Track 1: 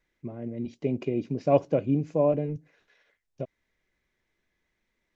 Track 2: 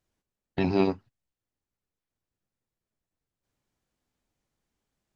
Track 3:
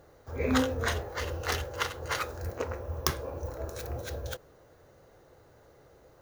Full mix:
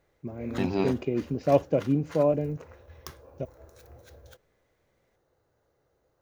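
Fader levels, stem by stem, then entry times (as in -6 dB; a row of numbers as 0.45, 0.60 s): 0.0, -3.5, -14.5 dB; 0.00, 0.00, 0.00 s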